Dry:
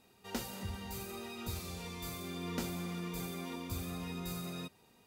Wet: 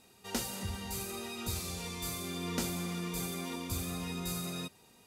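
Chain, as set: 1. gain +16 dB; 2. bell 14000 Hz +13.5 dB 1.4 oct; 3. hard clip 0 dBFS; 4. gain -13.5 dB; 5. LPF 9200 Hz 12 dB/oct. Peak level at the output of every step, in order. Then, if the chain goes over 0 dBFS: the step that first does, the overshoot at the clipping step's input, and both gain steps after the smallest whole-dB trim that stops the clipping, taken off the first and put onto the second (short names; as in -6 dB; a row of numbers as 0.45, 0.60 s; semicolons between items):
-8.5, -5.0, -5.0, -18.5, -20.0 dBFS; no overload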